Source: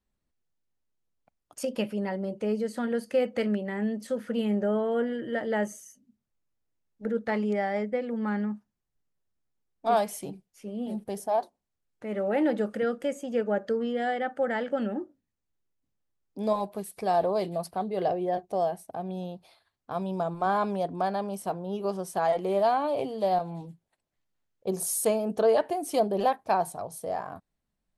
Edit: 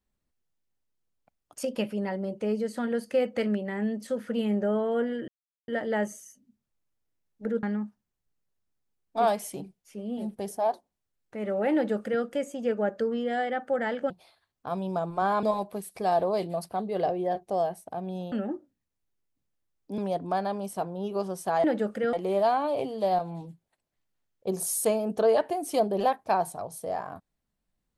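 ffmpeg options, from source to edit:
-filter_complex "[0:a]asplit=9[a][b][c][d][e][f][g][h][i];[a]atrim=end=5.28,asetpts=PTS-STARTPTS,afade=t=out:st=5.276:d=0.004:c=hsin,apad=pad_dur=0.4[j];[b]atrim=start=5.28:end=7.232,asetpts=PTS-STARTPTS,afade=t=in:d=0.004:c=hsin[k];[c]atrim=start=8.318:end=14.792[l];[d]atrim=start=19.338:end=20.672[m];[e]atrim=start=16.448:end=19.342[n];[f]atrim=start=14.788:end=16.452[o];[g]atrim=start=20.668:end=22.332[p];[h]atrim=start=12.428:end=12.922[q];[i]atrim=start=22.328[r];[j][k]concat=n=2:v=0:a=1[s];[s][l]acrossfade=d=0.004:c1=hsin:c2=hsin[t];[t][m]acrossfade=d=0.004:c1=hsin:c2=hsin[u];[u][n]acrossfade=d=0.004:c1=hsin:c2=hsin[v];[v][o]acrossfade=d=0.004:c1=hsin:c2=hsin[w];[w][p]acrossfade=d=0.004:c1=hsin:c2=hsin[x];[x][q]acrossfade=d=0.004:c1=hsin:c2=hsin[y];[y][r]acrossfade=d=0.004:c1=hsin:c2=hsin"

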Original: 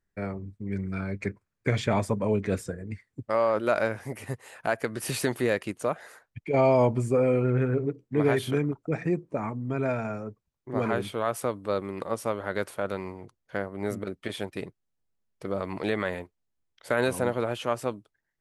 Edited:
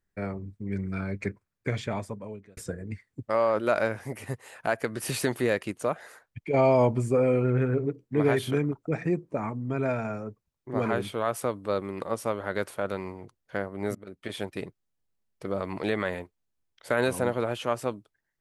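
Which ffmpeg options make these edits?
-filter_complex "[0:a]asplit=3[a][b][c];[a]atrim=end=2.57,asetpts=PTS-STARTPTS,afade=t=out:st=1.22:d=1.35[d];[b]atrim=start=2.57:end=13.95,asetpts=PTS-STARTPTS,afade=t=in:d=0.004:c=hsin,afade=t=out:st=11.376:d=0.004:c=hsin:silence=0.0749894[e];[c]atrim=start=13.95,asetpts=PTS-STARTPTS,afade=t=in:d=0.44:silence=0.0749894[f];[d][e][f]concat=n=3:v=0:a=1"

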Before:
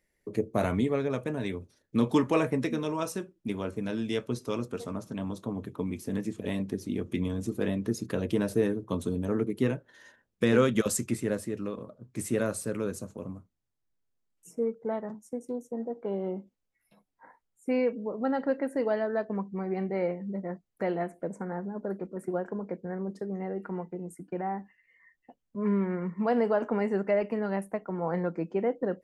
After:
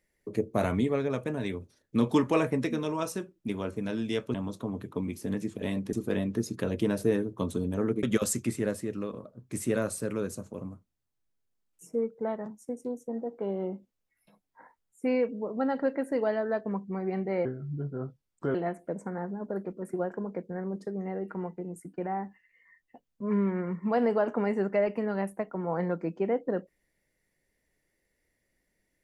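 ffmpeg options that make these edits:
-filter_complex "[0:a]asplit=6[a][b][c][d][e][f];[a]atrim=end=4.342[g];[b]atrim=start=5.168:end=6.762[h];[c]atrim=start=7.438:end=9.542[i];[d]atrim=start=10.668:end=20.094[j];[e]atrim=start=20.09:end=20.89,asetpts=PTS-STARTPTS,asetrate=32193,aresample=44100[k];[f]atrim=start=20.886[l];[g][h]acrossfade=d=0.004:c1=hsin:c2=hsin[m];[m][i]acrossfade=d=0.004:c1=hsin:c2=hsin[n];[n][j]acrossfade=d=0.004:c1=hsin:c2=hsin[o];[o][k]acrossfade=d=0.004:c1=hsin:c2=hsin[p];[p][l]acrossfade=d=0.004:c1=hsin:c2=hsin"

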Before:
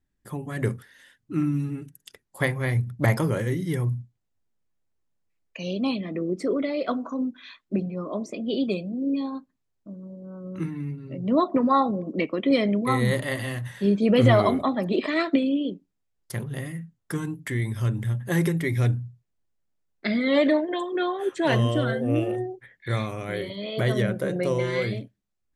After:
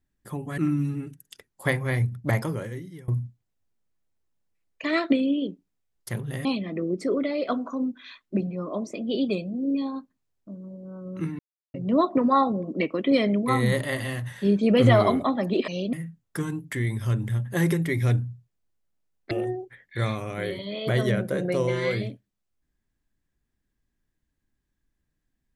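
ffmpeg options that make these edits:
-filter_complex "[0:a]asplit=10[a][b][c][d][e][f][g][h][i][j];[a]atrim=end=0.582[k];[b]atrim=start=1.328:end=3.83,asetpts=PTS-STARTPTS,afade=t=out:st=1.402:d=1.1:silence=0.0668344[l];[c]atrim=start=3.83:end=5.592,asetpts=PTS-STARTPTS,afade=t=in:d=0.004:c=hsin:silence=0.0668344[m];[d]atrim=start=15.068:end=16.682[n];[e]atrim=start=5.838:end=10.78,asetpts=PTS-STARTPTS,afade=t=out:st=4.938:d=0.004:c=hsin[o];[f]atrim=start=10.78:end=11.13,asetpts=PTS-STARTPTS,volume=0[p];[g]atrim=start=11.13:end=15.072,asetpts=PTS-STARTPTS,afade=t=in:d=0.004:c=hsin[q];[h]atrim=start=5.588:end=5.842[r];[i]atrim=start=16.678:end=20.062[s];[j]atrim=start=22.218[t];[l][m]concat=n=2:v=0:a=1[u];[k][u]acrossfade=d=0.004:c1=hsin:c2=hsin[v];[v][n]acrossfade=d=0.004:c1=hsin:c2=hsin[w];[o][p][q]concat=n=3:v=0:a=1[x];[w][x]acrossfade=d=0.004:c1=hsin:c2=hsin[y];[y][r]acrossfade=d=0.004:c1=hsin:c2=hsin[z];[z][s]acrossfade=d=0.004:c1=hsin:c2=hsin[aa];[aa][t]acrossfade=d=0.004:c1=hsin:c2=hsin"

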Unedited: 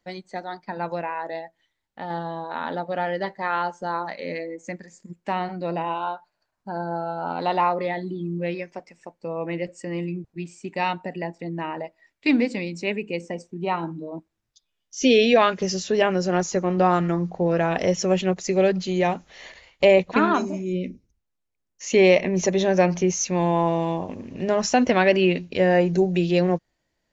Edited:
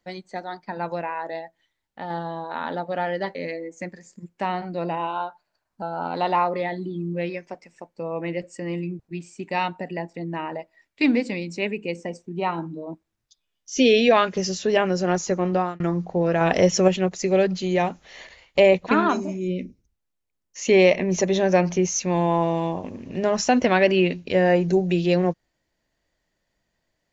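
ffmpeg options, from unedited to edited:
-filter_complex "[0:a]asplit=6[a][b][c][d][e][f];[a]atrim=end=3.352[g];[b]atrim=start=4.218:end=6.692[h];[c]atrim=start=7.068:end=17.05,asetpts=PTS-STARTPTS,afade=t=out:st=9.662:d=0.32[i];[d]atrim=start=17.05:end=17.662,asetpts=PTS-STARTPTS,afade=t=in:d=0.004:c=hsin[j];[e]atrim=start=17.658:end=18.132,asetpts=PTS-STARTPTS,volume=4dB[k];[f]atrim=start=18.128[l];[g][h]acrossfade=d=0.004:c1=hsin:c2=hsin[m];[i][j]concat=n=2:v=0:a=1[n];[m][n]acrossfade=d=0.004:c1=hsin:c2=hsin[o];[o][k]acrossfade=d=0.004:c1=hsin:c2=hsin[p];[p][l]acrossfade=d=0.004:c1=hsin:c2=hsin"

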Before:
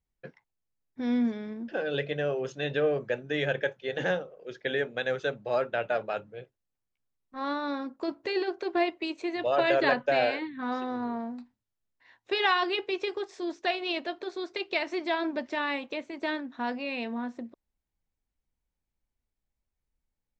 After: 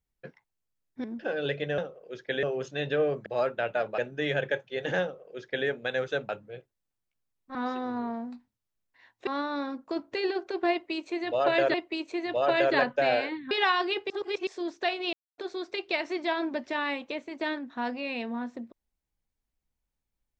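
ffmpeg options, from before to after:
-filter_complex "[0:a]asplit=15[a][b][c][d][e][f][g][h][i][j][k][l][m][n][o];[a]atrim=end=1.042[p];[b]atrim=start=1.528:end=2.272[q];[c]atrim=start=4.138:end=4.792[r];[d]atrim=start=2.268:end=3.102[s];[e]atrim=start=5.408:end=6.132[t];[f]atrim=start=3.098:end=5.412[u];[g]atrim=start=6.128:end=7.392[v];[h]atrim=start=10.608:end=12.332[w];[i]atrim=start=7.388:end=9.862[x];[j]atrim=start=8.838:end=10.612[y];[k]atrim=start=12.328:end=12.922[z];[l]atrim=start=12.918:end=13.292,asetpts=PTS-STARTPTS,areverse[aa];[m]atrim=start=13.288:end=13.95,asetpts=PTS-STARTPTS,afade=t=out:st=0.658:d=0.004:c=hsin[ab];[n]atrim=start=13.95:end=14.2,asetpts=PTS-STARTPTS,volume=0[ac];[o]atrim=start=14.2,asetpts=PTS-STARTPTS,afade=t=in:d=0.004:c=hsin[ad];[p][q]acrossfade=d=0.004:c1=hsin:c2=hsin[ae];[ae][r]acrossfade=d=0.004:c1=hsin:c2=hsin[af];[af][s]acrossfade=d=0.004:c1=hsin:c2=hsin[ag];[ag][t]acrossfade=d=0.004:c1=hsin:c2=hsin[ah];[ah][u]acrossfade=d=0.004:c1=hsin:c2=hsin[ai];[ai][v]acrossfade=d=0.004:c1=hsin:c2=hsin[aj];[aj][w]acrossfade=d=0.004:c1=hsin:c2=hsin[ak];[ak][x]acrossfade=d=0.004:c1=hsin:c2=hsin[al];[al][y]acrossfade=d=0.004:c1=hsin:c2=hsin[am];[am][z]acrossfade=d=0.004:c1=hsin:c2=hsin[an];[an][aa]acrossfade=d=0.004:c1=hsin:c2=hsin[ao];[ab][ac][ad]concat=n=3:v=0:a=1[ap];[ao][ap]acrossfade=d=0.004:c1=hsin:c2=hsin"

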